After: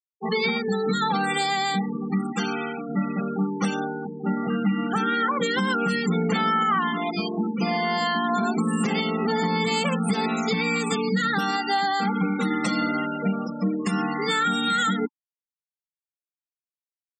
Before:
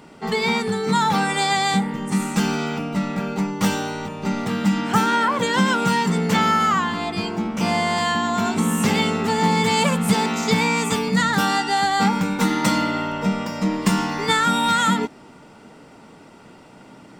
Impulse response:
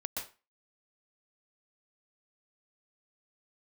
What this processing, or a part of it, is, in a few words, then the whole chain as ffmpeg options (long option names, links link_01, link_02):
PA system with an anti-feedback notch: -filter_complex "[0:a]bandreject=frequency=600:width=14,asettb=1/sr,asplit=3[link_01][link_02][link_03];[link_01]atrim=end=2.324[link_04];[link_02]atrim=start=2.32:end=2.89,asetpts=PTS-STARTPTS,afade=type=in:duration=0.004:curve=qsin,afade=type=out:start_time=0.566:duration=0.004:curve=qsin,highpass=frequency=390:poles=1[link_05];[link_03]atrim=start=2.886[link_06];[link_04][link_05]acrossfade=duration=0.004:curve1=hsin:curve2=qsin[link_07];[link_07][link_06]acrossfade=duration=0.004:curve1=qsin:curve2=hsin,afftfilt=real='re*gte(hypot(re,im),0.0794)':imag='im*gte(hypot(re,im),0.0794)':win_size=1024:overlap=0.75,highpass=frequency=170:width=0.5412,highpass=frequency=170:width=1.3066,asuperstop=centerf=950:order=8:qfactor=6.5,alimiter=limit=-14.5dB:level=0:latency=1:release=152"